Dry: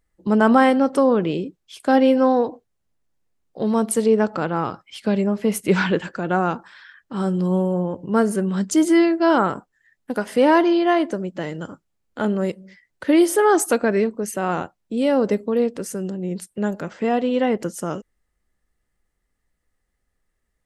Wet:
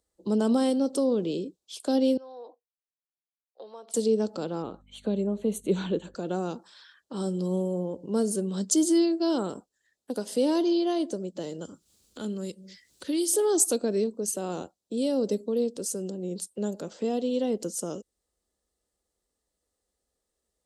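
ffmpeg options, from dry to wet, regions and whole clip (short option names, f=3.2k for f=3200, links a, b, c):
-filter_complex "[0:a]asettb=1/sr,asplit=3[a][b][c];[a]atrim=end=2.174[d];[b]atrim=start=2.17:end=3.94,asetpts=PTS-STARTPTS,afade=t=in:d=0.004:c=qsin,afade=t=out:st=1.766:d=0.004:c=qsin,agate=range=-21dB:threshold=-35dB:ratio=16:release=100:detection=peak,acompressor=threshold=-34dB:ratio=2.5:attack=3.2:release=140:knee=1:detection=peak,highpass=700,lowpass=3.5k[e];[c]atrim=start=3.936[f];[d][e]acrossfade=d=0.004:c1=hsin:c2=qsin[g];[g][f]acrossfade=d=0.004:c1=qsin:c2=hsin,asettb=1/sr,asplit=3[h][i][j];[h]atrim=end=4.624[k];[i]atrim=start=4.62:end=6.15,asetpts=PTS-STARTPTS,afade=t=in:d=0.004:c=qsin,afade=t=out:st=1.526:d=0.004:c=qsin,asuperstop=centerf=5100:order=4:qfactor=2.9,highshelf=f=3.7k:g=-11.5,aeval=exprs='val(0)+0.00447*(sin(2*PI*50*n/s)+sin(2*PI*2*50*n/s)/2+sin(2*PI*3*50*n/s)/3+sin(2*PI*4*50*n/s)/4+sin(2*PI*5*50*n/s)/5)':c=same[l];[j]atrim=start=6.146[m];[k][l]acrossfade=d=0.004:c1=hsin:c2=qsin[n];[n][m]acrossfade=d=0.004:c1=qsin:c2=hsin,asettb=1/sr,asplit=3[o][p][q];[o]atrim=end=11.654[r];[p]atrim=start=11.65:end=13.33,asetpts=PTS-STARTPTS,afade=t=in:d=0.004:c=qsin,afade=t=out:st=1.676:d=0.004:c=qsin,equalizer=f=670:t=o:w=1.9:g=-14,acompressor=mode=upward:threshold=-32dB:ratio=2.5:attack=3.2:release=140:knee=2.83:detection=peak[s];[q]atrim=start=13.326[t];[r][s]acrossfade=d=0.004:c1=hsin:c2=qsin[u];[u][t]acrossfade=d=0.004:c1=qsin:c2=hsin,equalizer=f=125:t=o:w=1:g=-10,equalizer=f=500:t=o:w=1:g=7,equalizer=f=2k:t=o:w=1:g=-11,equalizer=f=4k:t=o:w=1:g=7,equalizer=f=8k:t=o:w=1:g=7,acrossover=split=340|3000[v][w][x];[w]acompressor=threshold=-39dB:ratio=2[y];[v][y][x]amix=inputs=3:normalize=0,highpass=60,volume=-4.5dB"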